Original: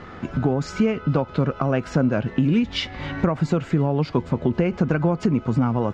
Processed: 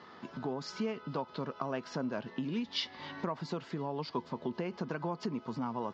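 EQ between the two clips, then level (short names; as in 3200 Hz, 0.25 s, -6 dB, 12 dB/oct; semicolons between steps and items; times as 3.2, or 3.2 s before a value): speaker cabinet 300–4900 Hz, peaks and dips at 310 Hz -5 dB, 530 Hz -4 dB, 780 Hz -10 dB, 1400 Hz -6 dB, 2300 Hz -5 dB, 3800 Hz -5 dB; resonant low shelf 740 Hz -8 dB, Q 1.5; band shelf 1800 Hz -10 dB; 0.0 dB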